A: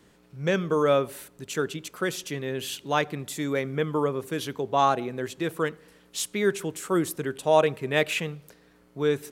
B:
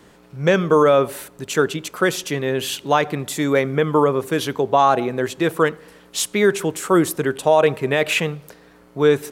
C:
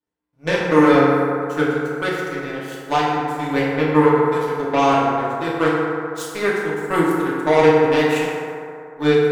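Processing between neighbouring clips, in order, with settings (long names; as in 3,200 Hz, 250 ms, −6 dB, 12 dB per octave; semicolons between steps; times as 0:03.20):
parametric band 840 Hz +4.5 dB 2 octaves; brickwall limiter −12.5 dBFS, peak gain reduction 8.5 dB; level +7.5 dB
power curve on the samples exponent 2; feedback delay network reverb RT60 2.7 s, low-frequency decay 0.75×, high-frequency decay 0.35×, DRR −7 dB; level −4 dB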